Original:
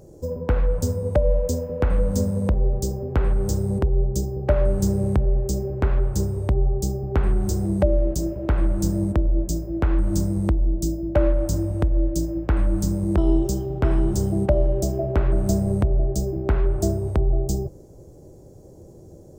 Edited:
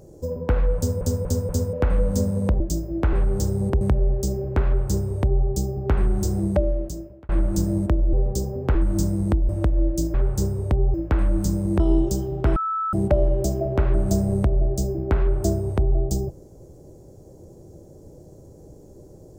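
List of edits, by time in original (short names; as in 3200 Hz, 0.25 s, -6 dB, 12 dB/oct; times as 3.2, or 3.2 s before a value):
0.77 stutter in place 0.24 s, 4 plays
2.6–3.22 swap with 9.39–9.92
3.9–5.07 cut
5.92–6.72 copy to 12.32
7.69–8.55 fade out
10.66–11.67 cut
13.94–14.31 bleep 1310 Hz -22 dBFS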